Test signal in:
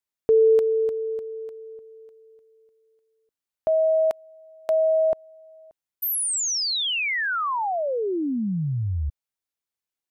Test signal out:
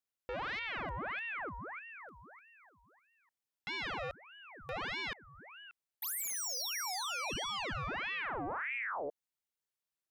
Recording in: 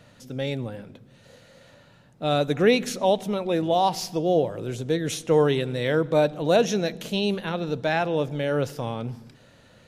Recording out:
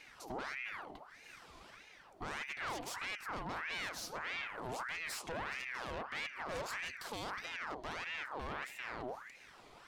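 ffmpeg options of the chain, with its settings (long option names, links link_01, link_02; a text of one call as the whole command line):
ffmpeg -i in.wav -af "aeval=exprs='0.473*(cos(1*acos(clip(val(0)/0.473,-1,1)))-cos(1*PI/2))+0.15*(cos(6*acos(clip(val(0)/0.473,-1,1)))-cos(6*PI/2))':channel_layout=same,alimiter=limit=-16.5dB:level=0:latency=1:release=450,aeval=exprs='(tanh(31.6*val(0)+0.2)-tanh(0.2))/31.6':channel_layout=same,aeval=exprs='val(0)*sin(2*PI*1400*n/s+1400*0.65/1.6*sin(2*PI*1.6*n/s))':channel_layout=same,volume=-1dB" out.wav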